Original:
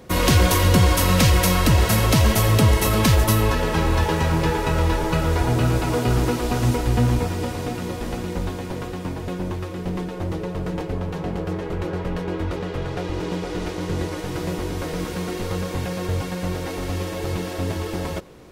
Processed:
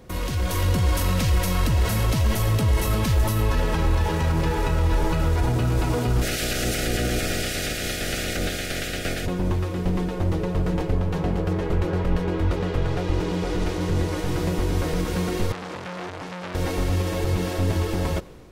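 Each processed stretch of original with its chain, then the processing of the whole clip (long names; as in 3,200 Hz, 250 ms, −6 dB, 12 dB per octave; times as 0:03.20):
0:06.21–0:09.25: ceiling on every frequency bin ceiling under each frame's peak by 22 dB + Butterworth band-reject 990 Hz, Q 1.4
0:15.52–0:16.55: high-pass filter 180 Hz + high-frequency loss of the air 61 metres + saturating transformer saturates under 2,500 Hz
whole clip: brickwall limiter −18.5 dBFS; automatic gain control gain up to 6 dB; low-shelf EQ 75 Hz +10.5 dB; level −4.5 dB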